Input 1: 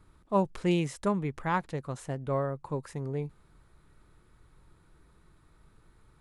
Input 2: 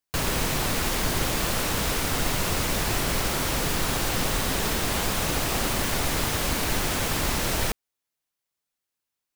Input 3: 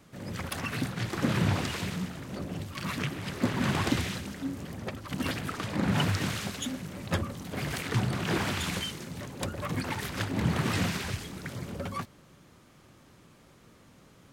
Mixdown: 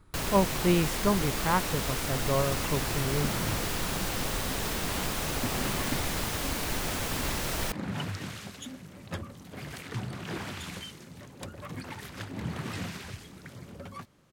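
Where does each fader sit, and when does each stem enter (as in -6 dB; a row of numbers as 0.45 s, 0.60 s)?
+2.0 dB, -6.0 dB, -7.5 dB; 0.00 s, 0.00 s, 2.00 s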